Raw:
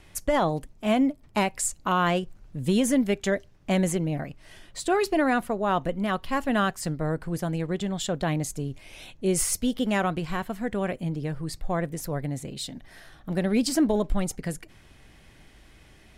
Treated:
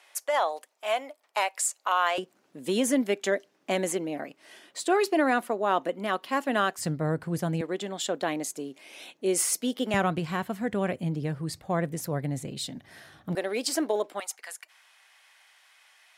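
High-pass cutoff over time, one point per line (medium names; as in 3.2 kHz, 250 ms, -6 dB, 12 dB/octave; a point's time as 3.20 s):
high-pass 24 dB/octave
580 Hz
from 2.18 s 260 Hz
from 6.78 s 84 Hz
from 7.61 s 260 Hz
from 9.94 s 88 Hz
from 13.35 s 370 Hz
from 14.20 s 840 Hz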